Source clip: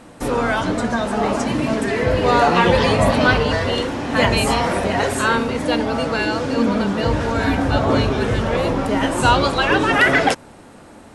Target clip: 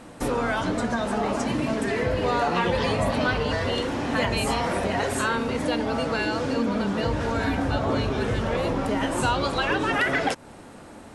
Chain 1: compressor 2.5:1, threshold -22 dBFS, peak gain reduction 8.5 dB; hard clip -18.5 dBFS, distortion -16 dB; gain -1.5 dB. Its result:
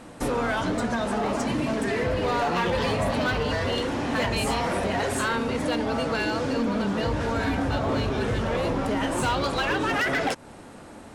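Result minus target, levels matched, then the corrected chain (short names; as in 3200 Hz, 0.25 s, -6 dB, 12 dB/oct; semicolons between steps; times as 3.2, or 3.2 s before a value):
hard clip: distortion +25 dB
compressor 2.5:1, threshold -22 dBFS, peak gain reduction 8.5 dB; hard clip -12 dBFS, distortion -40 dB; gain -1.5 dB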